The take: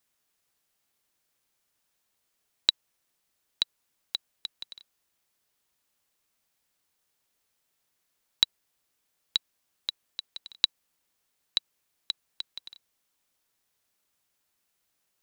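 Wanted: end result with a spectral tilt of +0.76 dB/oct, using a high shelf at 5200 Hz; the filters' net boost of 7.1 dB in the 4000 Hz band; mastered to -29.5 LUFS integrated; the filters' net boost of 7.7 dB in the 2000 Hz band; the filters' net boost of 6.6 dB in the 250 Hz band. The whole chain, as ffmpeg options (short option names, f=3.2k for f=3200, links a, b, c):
-af "equalizer=f=250:t=o:g=8.5,equalizer=f=2k:t=o:g=8,equalizer=f=4k:t=o:g=7,highshelf=f=5.2k:g=-4,volume=-5dB"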